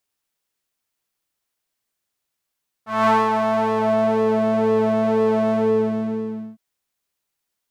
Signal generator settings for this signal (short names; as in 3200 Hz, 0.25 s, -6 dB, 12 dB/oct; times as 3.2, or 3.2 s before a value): synth patch with pulse-width modulation A3, oscillator 2 sine, interval -12 st, oscillator 2 level -5.5 dB, sub -22 dB, noise -13.5 dB, filter bandpass, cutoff 270 Hz, Q 2.3, filter envelope 2 oct, filter decay 1.49 s, filter sustain 50%, attack 0.21 s, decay 0.23 s, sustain -5.5 dB, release 1.07 s, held 2.64 s, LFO 2 Hz, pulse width 42%, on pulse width 13%